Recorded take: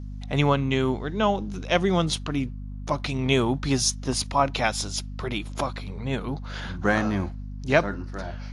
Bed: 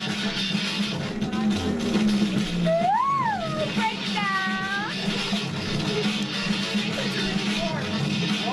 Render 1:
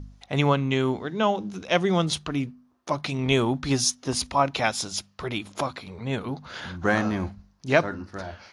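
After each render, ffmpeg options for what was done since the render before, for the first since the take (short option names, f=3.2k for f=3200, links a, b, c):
-af "bandreject=f=50:t=h:w=4,bandreject=f=100:t=h:w=4,bandreject=f=150:t=h:w=4,bandreject=f=200:t=h:w=4,bandreject=f=250:t=h:w=4"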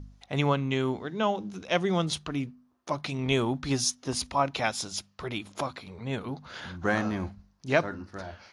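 -af "volume=-4dB"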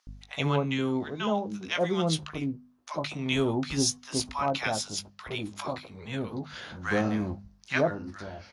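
-filter_complex "[0:a]asplit=2[a][b];[b]adelay=19,volume=-10dB[c];[a][c]amix=inputs=2:normalize=0,acrossover=split=1000[d][e];[d]adelay=70[f];[f][e]amix=inputs=2:normalize=0"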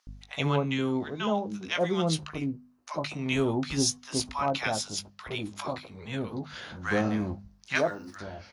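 -filter_complex "[0:a]asettb=1/sr,asplit=3[a][b][c];[a]atrim=end=2.114[d];[b]atrim=start=2.11:end=3.44,asetpts=PTS-STARTPTS,afade=t=in:d=0.004:c=qsin,afade=t=out:st=1.326:d=0.004:c=qsin,bandreject=f=3.4k:w=9.2[e];[c]atrim=start=3.436[f];[d][e]acrossfade=d=0.004:c1=hsin:c2=qsin[g];[g][f]acrossfade=d=0.004:c1=qsin:c2=hsin,asettb=1/sr,asplit=3[h][i][j];[h]atrim=end=7.754[k];[i]atrim=start=7.75:end=8.16,asetpts=PTS-STARTPTS,afade=t=in:d=0.004:c=qsin,afade=t=out:st=0.406:d=0.004:c=qsin,aemphasis=mode=production:type=bsi[l];[j]atrim=start=8.156[m];[k][l]acrossfade=d=0.004:c1=hsin:c2=qsin[n];[n][m]acrossfade=d=0.004:c1=qsin:c2=hsin"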